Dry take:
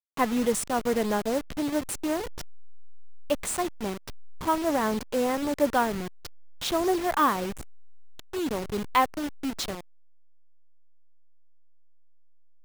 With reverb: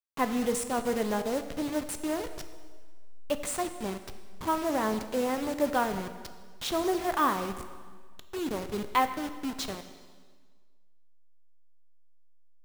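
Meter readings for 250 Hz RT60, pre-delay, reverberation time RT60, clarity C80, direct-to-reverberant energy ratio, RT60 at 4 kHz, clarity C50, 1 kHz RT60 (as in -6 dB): 1.7 s, 5 ms, 1.6 s, 11.5 dB, 8.5 dB, 1.5 s, 10.0 dB, 1.6 s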